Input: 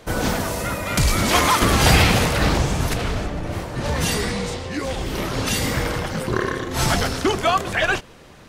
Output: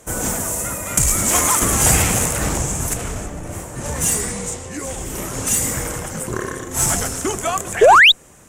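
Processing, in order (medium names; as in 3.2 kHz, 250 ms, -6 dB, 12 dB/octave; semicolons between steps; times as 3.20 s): resonant high shelf 5.7 kHz +10 dB, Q 3; painted sound rise, 7.81–8.12 s, 380–4000 Hz -5 dBFS; Chebyshev shaper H 6 -30 dB, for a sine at 2 dBFS; trim -3 dB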